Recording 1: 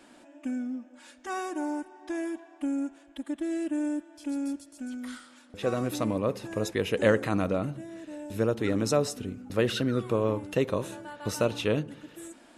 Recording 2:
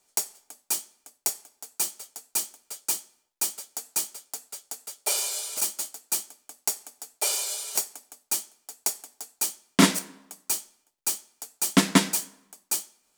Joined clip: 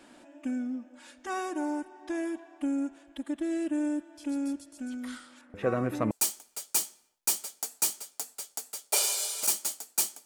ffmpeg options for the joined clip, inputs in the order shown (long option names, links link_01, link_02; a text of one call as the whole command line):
ffmpeg -i cue0.wav -i cue1.wav -filter_complex "[0:a]asettb=1/sr,asplit=3[link_01][link_02][link_03];[link_01]atrim=end=5.414[link_04];[link_02]atrim=start=5.41:end=6.11,asetpts=PTS-STARTPTS,afade=type=in:duration=0.004:curve=qsin,afade=type=out:start_time=0.696:duration=0.004:curve=qsin,highshelf=frequency=2700:width_type=q:width=1.5:gain=-10[link_05];[link_03]atrim=start=6.106[link_06];[link_04][link_05]acrossfade=duration=0.004:curve1=hsin:curve2=qsin[link_07];[link_07][link_06]acrossfade=duration=0.004:curve1=qsin:curve2=hsin,apad=whole_dur=10.25,atrim=end=10.25,atrim=end=6.112[link_08];[1:a]atrim=start=2.248:end=6.39[link_09];[link_08][link_09]acrossfade=duration=0.004:curve1=hsin:curve2=hsin" out.wav